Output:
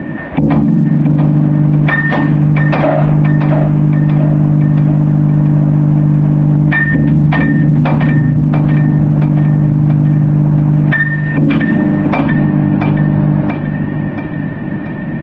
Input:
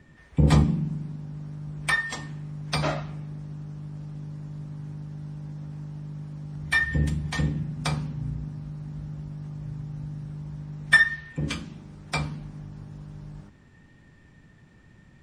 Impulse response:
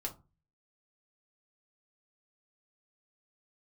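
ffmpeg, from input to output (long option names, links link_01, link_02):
-af "acompressor=threshold=-37dB:ratio=12,highpass=160,equalizer=frequency=210:width_type=q:width=4:gain=5,equalizer=frequency=300:width_type=q:width=4:gain=9,equalizer=frequency=430:width_type=q:width=4:gain=-8,equalizer=frequency=610:width_type=q:width=4:gain=7,equalizer=frequency=1300:width_type=q:width=4:gain=-6,equalizer=frequency=2000:width_type=q:width=4:gain=-5,lowpass=frequency=2300:width=0.5412,lowpass=frequency=2300:width=1.3066,aecho=1:1:681|1362|2043|2724|3405|4086:0.355|0.188|0.0997|0.0528|0.028|0.0148,alimiter=level_in=35dB:limit=-1dB:release=50:level=0:latency=1,volume=-1.5dB" -ar 48000 -c:a libopus -b:a 16k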